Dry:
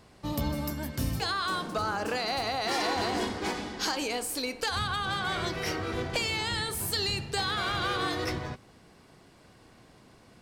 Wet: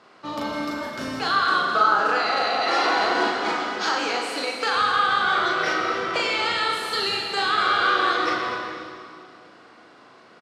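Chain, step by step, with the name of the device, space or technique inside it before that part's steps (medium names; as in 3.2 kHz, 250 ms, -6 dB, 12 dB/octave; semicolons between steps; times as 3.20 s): station announcement (band-pass 320–4700 Hz; peaking EQ 1.3 kHz +9.5 dB 0.39 oct; loudspeakers at several distances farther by 13 m -3 dB, 88 m -12 dB; reverberation RT60 2.4 s, pre-delay 54 ms, DRR 3 dB); trim +3.5 dB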